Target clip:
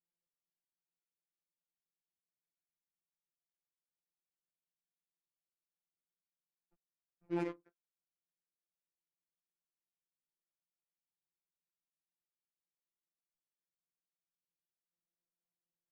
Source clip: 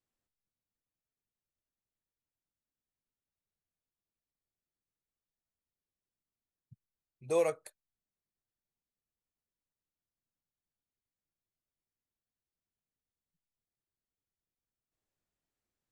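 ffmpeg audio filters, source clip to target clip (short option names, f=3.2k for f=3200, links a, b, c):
-filter_complex "[0:a]acrusher=bits=2:mode=log:mix=0:aa=0.000001,highpass=f=260:t=q:w=0.5412,highpass=f=260:t=q:w=1.307,lowpass=f=2.9k:t=q:w=0.5176,lowpass=f=2.9k:t=q:w=0.7071,lowpass=f=2.9k:t=q:w=1.932,afreqshift=-170,adynamicsmooth=sensitivity=7.5:basefreq=860,asplit=2[a][b];[b]adelay=13,volume=-2dB[c];[a][c]amix=inputs=2:normalize=0,afftfilt=real='hypot(re,im)*cos(PI*b)':imag='0':win_size=1024:overlap=0.75,volume=-6dB"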